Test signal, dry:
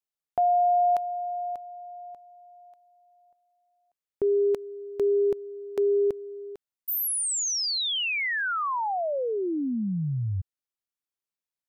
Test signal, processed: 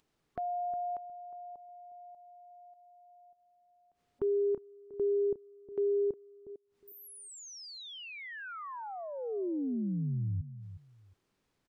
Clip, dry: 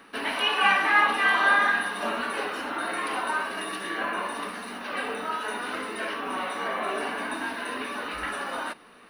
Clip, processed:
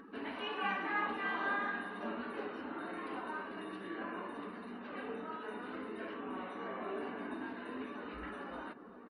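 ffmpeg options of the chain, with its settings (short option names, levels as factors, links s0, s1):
-filter_complex "[0:a]afftdn=nr=15:nf=-48,firequalizer=gain_entry='entry(140,0);entry(390,-1);entry(580,-8);entry(2400,-13);entry(14000,-30)':delay=0.05:min_phase=1,acompressor=mode=upward:threshold=0.0112:ratio=2.5:attack=7.8:release=81:knee=2.83:detection=peak,asplit=2[s0][s1];[s1]adelay=360,lowpass=f=990:p=1,volume=0.237,asplit=2[s2][s3];[s3]adelay=360,lowpass=f=990:p=1,volume=0.2[s4];[s2][s4]amix=inputs=2:normalize=0[s5];[s0][s5]amix=inputs=2:normalize=0,volume=0.562"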